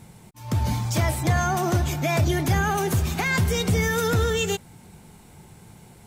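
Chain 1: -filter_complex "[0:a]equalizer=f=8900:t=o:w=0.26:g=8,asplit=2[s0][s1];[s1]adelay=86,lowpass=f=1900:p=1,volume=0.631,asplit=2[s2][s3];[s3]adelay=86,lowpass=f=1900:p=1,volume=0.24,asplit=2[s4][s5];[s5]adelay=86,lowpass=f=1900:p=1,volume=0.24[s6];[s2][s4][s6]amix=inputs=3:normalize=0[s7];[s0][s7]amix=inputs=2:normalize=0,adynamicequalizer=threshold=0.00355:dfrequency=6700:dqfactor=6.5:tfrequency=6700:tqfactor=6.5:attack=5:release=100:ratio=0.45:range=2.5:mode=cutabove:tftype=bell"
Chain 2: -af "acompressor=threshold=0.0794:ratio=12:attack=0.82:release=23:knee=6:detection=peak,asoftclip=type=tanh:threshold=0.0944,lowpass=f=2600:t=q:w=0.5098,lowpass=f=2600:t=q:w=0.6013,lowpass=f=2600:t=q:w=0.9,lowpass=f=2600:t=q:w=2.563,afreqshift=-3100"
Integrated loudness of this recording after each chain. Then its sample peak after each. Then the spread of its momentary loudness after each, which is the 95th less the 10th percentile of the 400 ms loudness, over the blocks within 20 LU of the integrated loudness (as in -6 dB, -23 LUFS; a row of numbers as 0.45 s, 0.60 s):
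-22.0 LUFS, -25.5 LUFS; -9.0 dBFS, -17.0 dBFS; 5 LU, 20 LU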